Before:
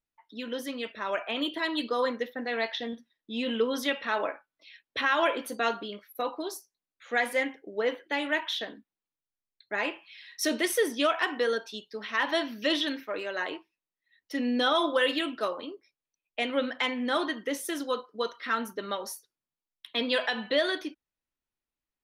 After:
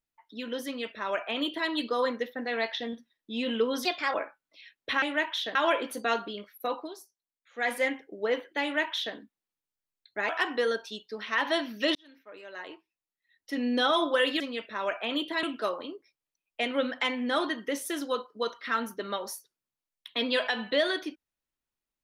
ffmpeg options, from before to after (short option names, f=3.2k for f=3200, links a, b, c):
-filter_complex "[0:a]asplit=11[a][b][c][d][e][f][g][h][i][j][k];[a]atrim=end=3.854[l];[b]atrim=start=3.85:end=4.22,asetpts=PTS-STARTPTS,asetrate=56007,aresample=44100,atrim=end_sample=12848,asetpts=PTS-STARTPTS[m];[c]atrim=start=4.216:end=5.102[n];[d]atrim=start=8.168:end=8.702[o];[e]atrim=start=5.098:end=6.52,asetpts=PTS-STARTPTS,afade=t=out:st=1.252:d=0.17:c=qua:silence=0.334965[p];[f]atrim=start=6.52:end=7.06,asetpts=PTS-STARTPTS,volume=-9.5dB[q];[g]atrim=start=7.06:end=9.842,asetpts=PTS-STARTPTS,afade=t=in:d=0.17:c=qua:silence=0.334965[r];[h]atrim=start=11.108:end=12.77,asetpts=PTS-STARTPTS,afade=t=out:st=1.658:d=0.004:c=hsin[s];[i]atrim=start=12.77:end=15.222,asetpts=PTS-STARTPTS,afade=t=in:d=1.83[t];[j]atrim=start=0.658:end=1.692[u];[k]atrim=start=15.218[v];[l][m]acrossfade=d=0.004:c1=hsin:c2=hsin[w];[w][n]acrossfade=d=0.004:c1=hsin:c2=hsin[x];[x][o]acrossfade=d=0.004:c1=hsin:c2=hsin[y];[p][q][r]concat=n=3:v=0:a=1[z];[y][z]acrossfade=d=0.004:c1=hsin:c2=hsin[aa];[s][t]concat=n=2:v=0:a=1[ab];[aa][ab]acrossfade=d=0.004:c1=hsin:c2=hsin[ac];[ac][u]acrossfade=d=0.004:c1=hsin:c2=hsin[ad];[ad][v]acrossfade=d=0.004:c1=hsin:c2=hsin"